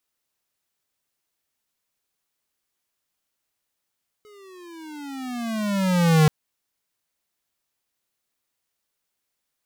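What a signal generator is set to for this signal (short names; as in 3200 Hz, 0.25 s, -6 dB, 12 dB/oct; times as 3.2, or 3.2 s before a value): gliding synth tone square, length 2.03 s, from 427 Hz, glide -18 st, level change +35 dB, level -14 dB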